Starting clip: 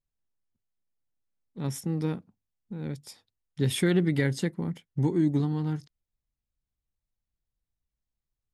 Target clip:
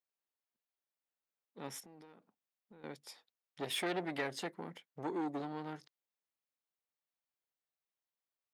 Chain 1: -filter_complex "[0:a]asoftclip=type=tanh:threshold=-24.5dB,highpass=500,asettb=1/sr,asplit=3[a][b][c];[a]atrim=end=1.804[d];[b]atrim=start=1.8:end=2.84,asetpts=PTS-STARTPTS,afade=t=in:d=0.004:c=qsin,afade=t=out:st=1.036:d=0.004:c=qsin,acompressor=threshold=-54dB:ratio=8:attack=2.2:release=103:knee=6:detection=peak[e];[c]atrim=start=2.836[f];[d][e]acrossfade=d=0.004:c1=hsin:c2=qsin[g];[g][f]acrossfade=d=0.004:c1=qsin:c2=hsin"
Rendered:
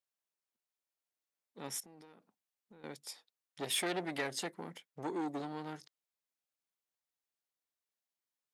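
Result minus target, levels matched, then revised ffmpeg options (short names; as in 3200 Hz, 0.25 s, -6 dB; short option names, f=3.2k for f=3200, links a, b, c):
8000 Hz band +6.5 dB
-filter_complex "[0:a]asoftclip=type=tanh:threshold=-24.5dB,highpass=500,equalizer=f=8.9k:w=0.58:g=-9,asettb=1/sr,asplit=3[a][b][c];[a]atrim=end=1.804[d];[b]atrim=start=1.8:end=2.84,asetpts=PTS-STARTPTS,afade=t=in:d=0.004:c=qsin,afade=t=out:st=1.036:d=0.004:c=qsin,acompressor=threshold=-54dB:ratio=8:attack=2.2:release=103:knee=6:detection=peak[e];[c]atrim=start=2.836[f];[d][e]acrossfade=d=0.004:c1=hsin:c2=qsin[g];[g][f]acrossfade=d=0.004:c1=qsin:c2=hsin"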